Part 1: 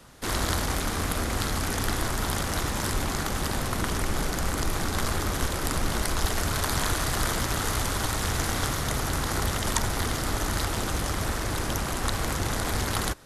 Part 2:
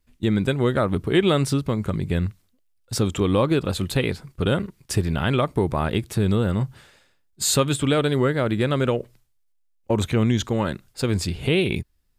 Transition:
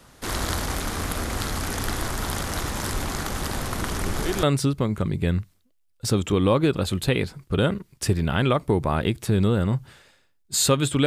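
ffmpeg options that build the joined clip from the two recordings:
-filter_complex "[1:a]asplit=2[s0][s1];[0:a]apad=whole_dur=11.06,atrim=end=11.06,atrim=end=4.432[s2];[s1]atrim=start=1.308:end=7.94[s3];[s0]atrim=start=0.88:end=1.31,asetpts=PTS-STARTPTS,volume=0.316,afade=t=in:d=0.004:c=hsin,afade=t=out:st=0.426:d=0.004:c=hsin,adelay=4000[s4];[s2][s3]acrossfade=d=0.004:c1=hsin:c2=hsin[s5];[s5][s4]amix=inputs=2:normalize=0"

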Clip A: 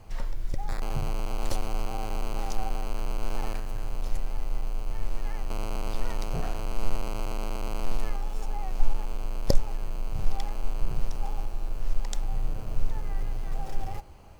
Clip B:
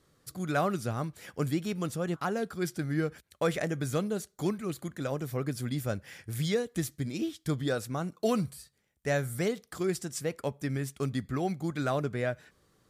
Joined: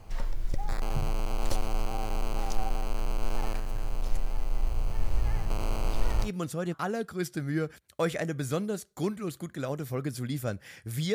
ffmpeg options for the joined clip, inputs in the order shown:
-filter_complex "[0:a]asettb=1/sr,asplit=3[s0][s1][s2];[s0]atrim=end=4.504[s3];[s1]atrim=start=4.5:end=6.3,asetpts=PTS-STARTPTS,afade=t=in:d=0.004:c=qsin,afade=t=out:st=1.796:d=0.004:c=qsin,asplit=5[s4][s5][s6][s7][s8];[s5]adelay=93,afreqshift=-56,volume=0.447[s9];[s6]adelay=186,afreqshift=-112,volume=0.143[s10];[s7]adelay=279,afreqshift=-168,volume=0.0457[s11];[s8]adelay=372,afreqshift=-224,volume=0.0146[s12];[s4][s9][s10][s11][s12]amix=inputs=5:normalize=0,atrim=end_sample=79380[s13];[s2]atrim=start=6.296[s14];[s3][s13]acrossfade=d=0.004:c1=hsin:c2=qsin[s15];[s15][s14]acrossfade=d=0.004:c1=qsin:c2=hsin,apad=whole_dur=11.14,atrim=end=11.14,atrim=end=6.3,asetpts=PTS-STARTPTS[s16];[1:a]atrim=start=1.64:end=6.56,asetpts=PTS-STARTPTS[s17];[s16][s17]acrossfade=d=0.08:c1=tri:c2=tri"

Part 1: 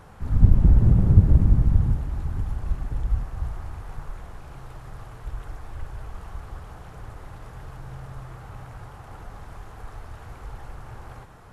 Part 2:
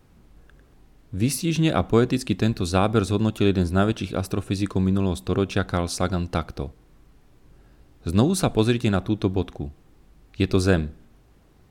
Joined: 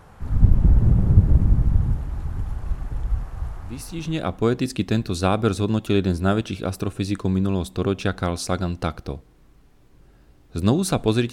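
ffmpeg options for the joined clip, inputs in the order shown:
-filter_complex "[0:a]apad=whole_dur=11.32,atrim=end=11.32,atrim=end=4.73,asetpts=PTS-STARTPTS[s0];[1:a]atrim=start=0.96:end=8.83,asetpts=PTS-STARTPTS[s1];[s0][s1]acrossfade=d=1.28:c1=tri:c2=tri"

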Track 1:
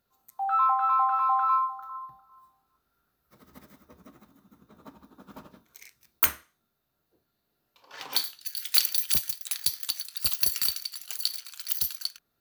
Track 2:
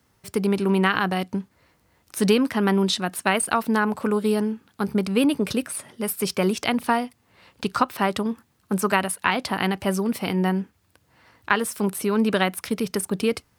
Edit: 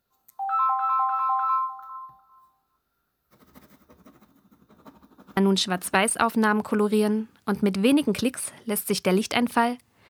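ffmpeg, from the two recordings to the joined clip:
-filter_complex "[0:a]apad=whole_dur=10.09,atrim=end=10.09,atrim=end=5.372[s0];[1:a]atrim=start=2.688:end=7.41[s1];[s0][s1]acrossfade=d=0.004:c1=hsin:c2=hsin,asplit=2[s2][s3];[s3]afade=t=in:st=4.98:d=0.01,afade=t=out:st=5.37:d=0.01,aecho=0:1:570|1140|1710:0.749894|0.112484|0.0168726[s4];[s2][s4]amix=inputs=2:normalize=0"

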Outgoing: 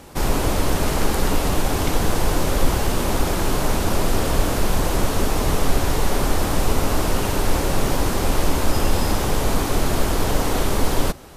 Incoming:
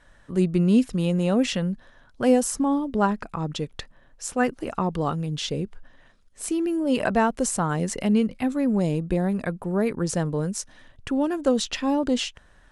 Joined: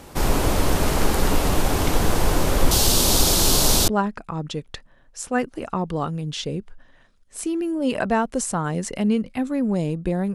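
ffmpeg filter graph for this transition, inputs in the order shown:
-filter_complex "[0:a]asettb=1/sr,asplit=3[s0][s1][s2];[s0]atrim=end=2.714[s3];[s1]atrim=start=2.71:end=3.88,asetpts=PTS-STARTPTS,afade=t=in:d=0.004:c=qsin,afade=t=out:st=1.166:d=0.004:c=qsin,highshelf=f=2900:t=q:w=1.5:g=11[s4];[s2]atrim=start=3.876[s5];[s3][s4]acrossfade=d=0.004:c1=hsin:c2=qsin[s6];[s6][s5]acrossfade=d=0.004:c1=qsin:c2=hsin,apad=whole_dur=10.34,atrim=end=10.34,atrim=end=3.882[s7];[1:a]atrim=start=2.928:end=9.39[s8];[s7][s8]acrossfade=d=0.004:c1=hsin:c2=hsin"

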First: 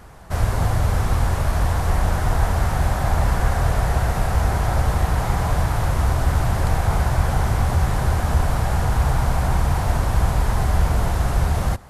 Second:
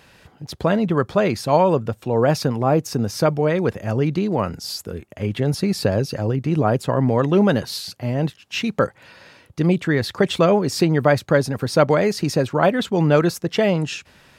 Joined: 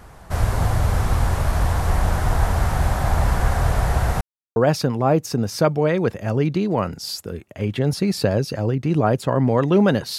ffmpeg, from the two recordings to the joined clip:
-filter_complex "[0:a]apad=whole_dur=10.18,atrim=end=10.18,asplit=2[s0][s1];[s0]atrim=end=4.21,asetpts=PTS-STARTPTS,afade=t=out:st=4.206:d=0.004:c=hsin[s2];[s1]atrim=start=4.21:end=4.56,asetpts=PTS-STARTPTS,volume=0[s3];[1:a]atrim=start=2.17:end=7.79,asetpts=PTS-STARTPTS,afade=t=in:d=0.004:c=hsin[s4];[s2][s3][s4]concat=n=3:v=0:a=1"

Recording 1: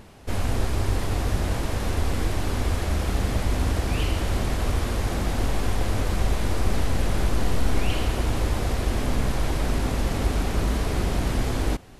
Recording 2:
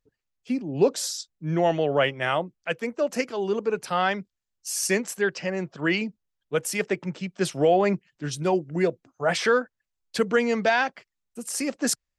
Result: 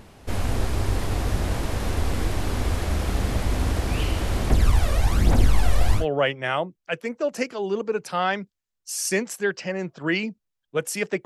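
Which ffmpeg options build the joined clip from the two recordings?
-filter_complex "[0:a]asettb=1/sr,asplit=3[s0][s1][s2];[s0]atrim=end=4.504[s3];[s1]atrim=start=4.5:end=6.06,asetpts=PTS-STARTPTS,afade=t=in:d=0.004:c=qsin,afade=t=out:st=1.556:d=0.004:c=qsin,aphaser=in_gain=1:out_gain=1:delay=1.8:decay=0.62:speed=1.2:type=triangular[s4];[s2]atrim=start=6.056[s5];[s3][s4]acrossfade=d=0.004:c1=hsin:c2=qsin[s6];[s6][s5]acrossfade=d=0.004:c1=qsin:c2=hsin,apad=whole_dur=11.25,atrim=end=11.25,atrim=end=6.06,asetpts=PTS-STARTPTS[s7];[1:a]atrim=start=1.72:end=7.03,asetpts=PTS-STARTPTS[s8];[s7][s8]acrossfade=d=0.12:c1=tri:c2=tri"

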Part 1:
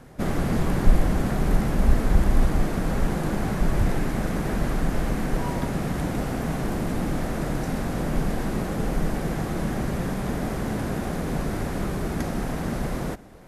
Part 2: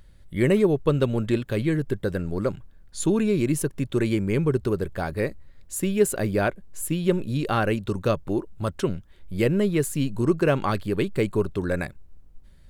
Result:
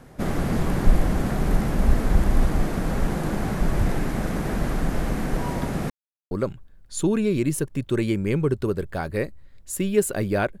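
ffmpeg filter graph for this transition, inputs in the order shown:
-filter_complex "[0:a]apad=whole_dur=10.6,atrim=end=10.6,asplit=2[s0][s1];[s0]atrim=end=5.9,asetpts=PTS-STARTPTS,afade=t=out:st=5.896:d=0.004:c=hsin[s2];[s1]atrim=start=5.9:end=6.31,asetpts=PTS-STARTPTS,volume=0[s3];[1:a]atrim=start=2.34:end=6.63,asetpts=PTS-STARTPTS,afade=t=in:d=0.004:c=hsin[s4];[s2][s3][s4]concat=n=3:v=0:a=1"

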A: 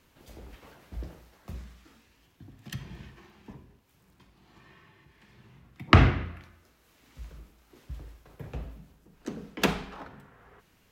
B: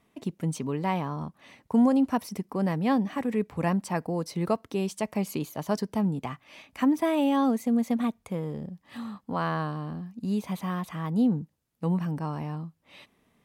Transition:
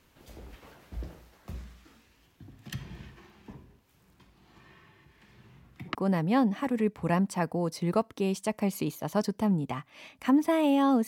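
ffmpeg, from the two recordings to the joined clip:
-filter_complex "[0:a]apad=whole_dur=11.07,atrim=end=11.07,atrim=end=5.95,asetpts=PTS-STARTPTS[s0];[1:a]atrim=start=2.39:end=7.61,asetpts=PTS-STARTPTS[s1];[s0][s1]acrossfade=d=0.1:c1=tri:c2=tri"

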